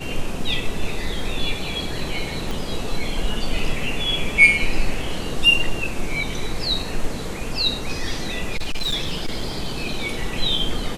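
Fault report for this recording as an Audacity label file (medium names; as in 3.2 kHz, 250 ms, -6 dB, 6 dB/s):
2.510000	2.510000	pop
8.560000	10.160000	clipped -18.5 dBFS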